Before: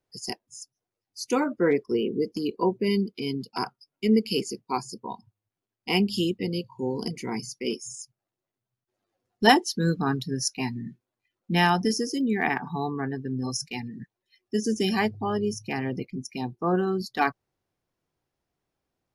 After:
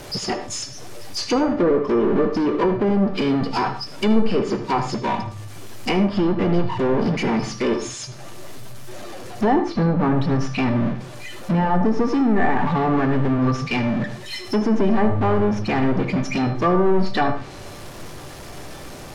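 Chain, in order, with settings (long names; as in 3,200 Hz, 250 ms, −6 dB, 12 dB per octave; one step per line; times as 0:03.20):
power curve on the samples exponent 0.35
treble cut that deepens with the level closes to 940 Hz, closed at −9 dBFS
tuned comb filter 590 Hz, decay 0.52 s, mix 80%
on a send: convolution reverb RT60 0.30 s, pre-delay 76 ms, DRR 10 dB
on the sum: level +7.5 dB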